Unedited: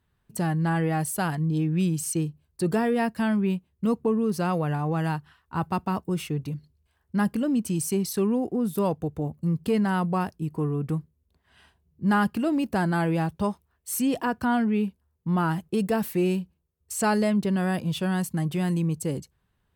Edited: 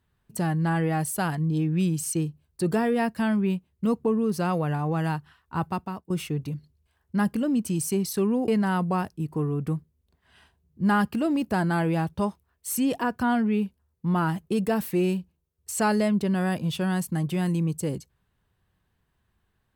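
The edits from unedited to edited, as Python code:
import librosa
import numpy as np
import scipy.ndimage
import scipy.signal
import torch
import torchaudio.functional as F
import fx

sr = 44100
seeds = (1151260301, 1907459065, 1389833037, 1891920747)

y = fx.edit(x, sr, fx.fade_out_to(start_s=5.62, length_s=0.48, floor_db=-18.5),
    fx.cut(start_s=8.48, length_s=1.22), tone=tone)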